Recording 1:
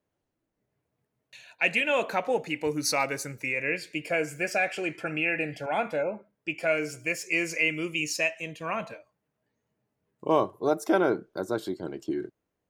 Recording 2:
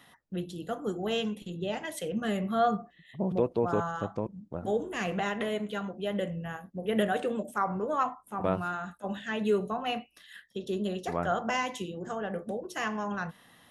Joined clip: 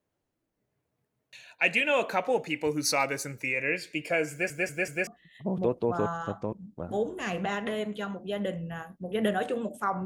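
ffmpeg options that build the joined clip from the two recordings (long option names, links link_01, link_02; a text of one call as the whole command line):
ffmpeg -i cue0.wav -i cue1.wav -filter_complex "[0:a]apad=whole_dur=10.05,atrim=end=10.05,asplit=4[link_01][link_02][link_03][link_04];[link_01]atrim=end=4.502[link_05];[link_02]atrim=start=4.308:end=4.502[link_06];[link_03]atrim=start=4.308:end=4.502[link_07];[link_04]atrim=start=4.308:end=4.502[link_08];[1:a]atrim=start=2.808:end=7.79[link_09];[link_05][link_06]acrossfade=duration=0.004:curve1=hsin:curve2=hsin[link_10];[link_10][link_07]acrossfade=duration=0.004:curve1=hsin:curve2=hsin[link_11];[link_11][link_08]acrossfade=duration=0.004:curve1=hsin:curve2=hsin[link_12];[link_12][link_09]acrossfade=duration=0.004:curve1=hsin:curve2=hsin" out.wav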